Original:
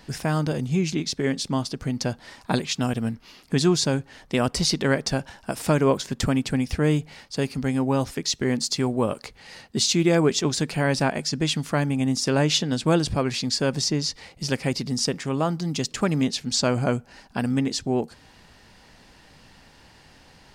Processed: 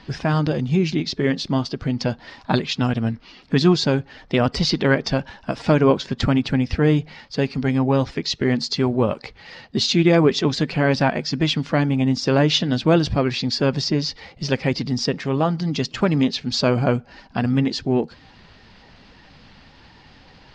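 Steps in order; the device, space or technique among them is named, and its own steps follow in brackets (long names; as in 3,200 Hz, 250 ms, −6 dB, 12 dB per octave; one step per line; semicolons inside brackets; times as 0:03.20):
clip after many re-uploads (low-pass filter 4,900 Hz 24 dB per octave; spectral magnitudes quantised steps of 15 dB)
level +4.5 dB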